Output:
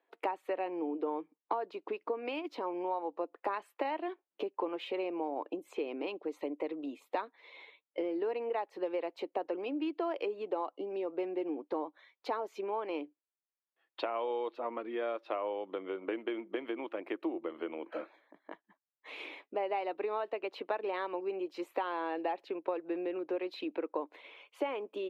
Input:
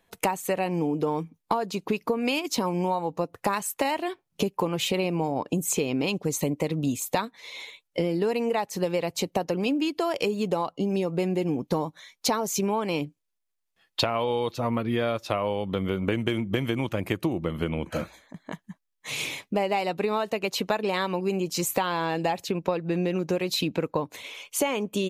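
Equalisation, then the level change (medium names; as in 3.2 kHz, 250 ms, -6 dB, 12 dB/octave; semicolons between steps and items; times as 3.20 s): Chebyshev high-pass 310 Hz, order 4; distance through air 440 m; -6.0 dB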